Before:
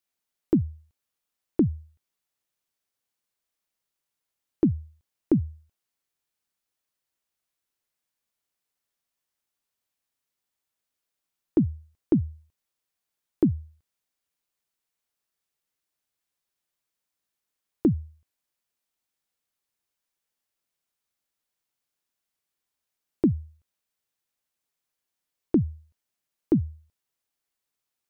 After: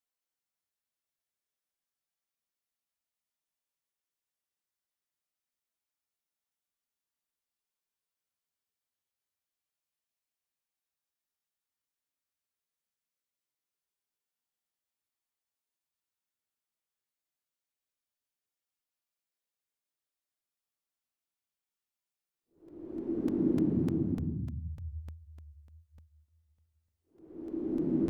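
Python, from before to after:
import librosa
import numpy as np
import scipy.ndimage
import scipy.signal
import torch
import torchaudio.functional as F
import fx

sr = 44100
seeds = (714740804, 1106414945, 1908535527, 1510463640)

y = fx.paulstretch(x, sr, seeds[0], factor=8.3, window_s=0.25, from_s=8.74)
y = fx.doubler(y, sr, ms=12.0, db=-11.5)
y = fx.buffer_crackle(y, sr, first_s=0.48, period_s=0.3, block=128, kind='repeat')
y = y * 10.0 ** (-8.5 / 20.0)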